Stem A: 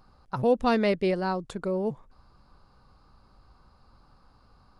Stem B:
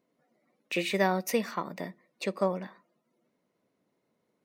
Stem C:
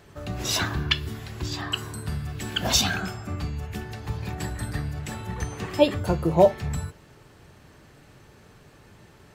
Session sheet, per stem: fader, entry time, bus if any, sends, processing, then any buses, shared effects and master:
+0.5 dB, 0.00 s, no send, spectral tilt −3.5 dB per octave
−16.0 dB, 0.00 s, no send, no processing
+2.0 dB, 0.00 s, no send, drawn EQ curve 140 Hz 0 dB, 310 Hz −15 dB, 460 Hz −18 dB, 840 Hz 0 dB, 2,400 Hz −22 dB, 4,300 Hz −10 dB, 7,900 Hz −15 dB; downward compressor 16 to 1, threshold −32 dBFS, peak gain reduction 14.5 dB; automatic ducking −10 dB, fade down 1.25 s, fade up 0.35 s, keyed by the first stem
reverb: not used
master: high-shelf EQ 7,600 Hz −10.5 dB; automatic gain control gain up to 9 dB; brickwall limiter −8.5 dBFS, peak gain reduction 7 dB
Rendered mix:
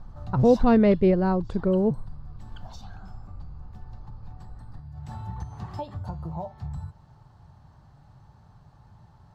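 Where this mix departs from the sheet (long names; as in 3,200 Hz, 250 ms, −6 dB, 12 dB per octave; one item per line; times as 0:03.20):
stem B: muted
master: missing automatic gain control gain up to 9 dB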